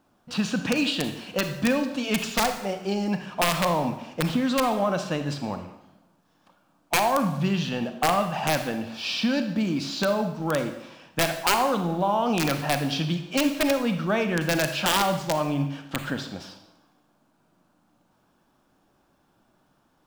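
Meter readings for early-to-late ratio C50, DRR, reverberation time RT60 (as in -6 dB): 8.5 dB, 7.0 dB, 0.75 s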